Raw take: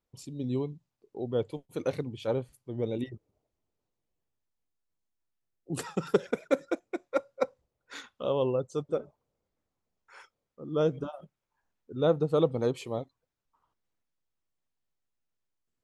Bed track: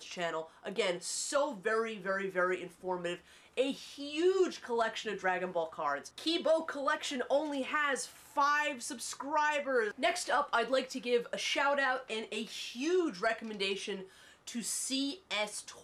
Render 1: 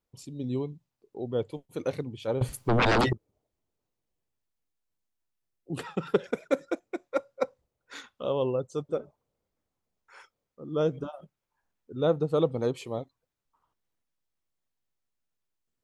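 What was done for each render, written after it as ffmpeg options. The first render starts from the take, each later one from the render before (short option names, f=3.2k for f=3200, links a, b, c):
-filter_complex "[0:a]asettb=1/sr,asplit=3[a][b][c];[a]atrim=end=2.414[d];[b]atrim=start=2.41:end=3.13,asetpts=PTS-STARTPTS,afade=t=in:d=0.004:c=qsin,afade=t=out:st=0.716:d=0.004:c=qsin,aeval=exprs='0.112*sin(PI/2*7.08*val(0)/0.112)':c=same[e];[c]atrim=start=3.126[f];[d][e]acrossfade=d=0.004:c1=hsin:c2=qsin[g];[g][f]acrossfade=d=0.004:c1=qsin:c2=hsin,asettb=1/sr,asplit=3[h][i][j];[h]atrim=end=5.744[k];[i]atrim=start=5.74:end=6.24,asetpts=PTS-STARTPTS,afade=t=in:d=0.004:c=qsin,afade=t=out:st=0.496:d=0.004:c=qsin,highshelf=f=4.4k:t=q:w=1.5:g=-8[l];[j]atrim=start=6.236[m];[k][l]acrossfade=d=0.004:c1=hsin:c2=qsin[n];[n][m]acrossfade=d=0.004:c1=qsin:c2=hsin"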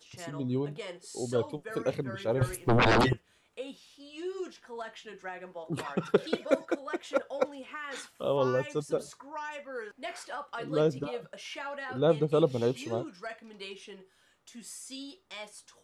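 -filter_complex "[1:a]volume=-8.5dB[a];[0:a][a]amix=inputs=2:normalize=0"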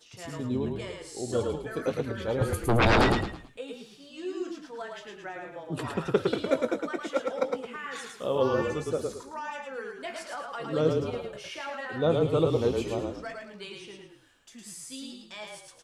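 -filter_complex "[0:a]asplit=2[a][b];[b]adelay=19,volume=-12dB[c];[a][c]amix=inputs=2:normalize=0,asplit=5[d][e][f][g][h];[e]adelay=109,afreqshift=-30,volume=-3.5dB[i];[f]adelay=218,afreqshift=-60,volume=-12.9dB[j];[g]adelay=327,afreqshift=-90,volume=-22.2dB[k];[h]adelay=436,afreqshift=-120,volume=-31.6dB[l];[d][i][j][k][l]amix=inputs=5:normalize=0"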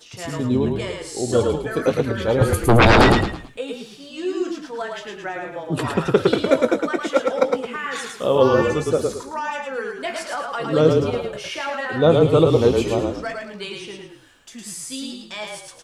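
-af "volume=10dB,alimiter=limit=-3dB:level=0:latency=1"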